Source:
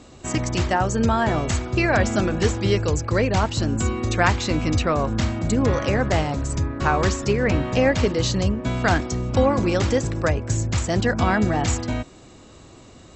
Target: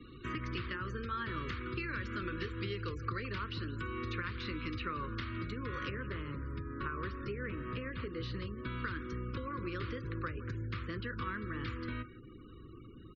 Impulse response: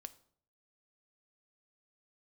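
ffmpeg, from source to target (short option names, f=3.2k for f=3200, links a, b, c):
-filter_complex "[0:a]acompressor=threshold=-24dB:ratio=8,asuperstop=centerf=740:order=4:qfactor=0.86,asetnsamples=n=441:p=0,asendcmd='5.9 highshelf g -11.5;8.21 highshelf g -4.5',highshelf=f=2.3k:g=2.5,acrossover=split=110|420|3100[a][b][c][d];[a]acompressor=threshold=-40dB:ratio=4[e];[b]acompressor=threshold=-41dB:ratio=4[f];[c]acompressor=threshold=-37dB:ratio=4[g];[d]acompressor=threshold=-45dB:ratio=4[h];[e][f][g][h]amix=inputs=4:normalize=0,lowpass=f=4.4k:w=0.5412,lowpass=f=4.4k:w=1.3066,aecho=1:1:166|332:0.15|0.0359[i];[1:a]atrim=start_sample=2205,atrim=end_sample=3528,asetrate=57330,aresample=44100[j];[i][j]afir=irnorm=-1:irlink=0,afftfilt=real='re*gte(hypot(re,im),0.00126)':imag='im*gte(hypot(re,im),0.00126)':win_size=1024:overlap=0.75,equalizer=f=1.2k:t=o:w=0.64:g=8,volume=3.5dB"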